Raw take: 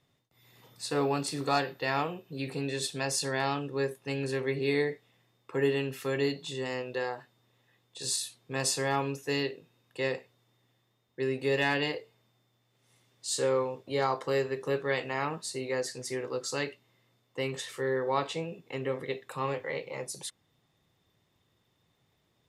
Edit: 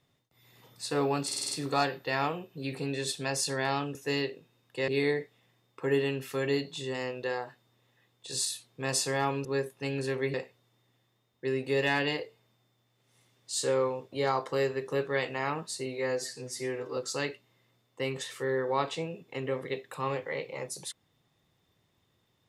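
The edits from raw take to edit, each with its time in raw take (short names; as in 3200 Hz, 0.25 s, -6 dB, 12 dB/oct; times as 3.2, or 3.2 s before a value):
1.26 stutter 0.05 s, 6 plays
3.7–4.59 swap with 9.16–10.09
15.61–16.35 stretch 1.5×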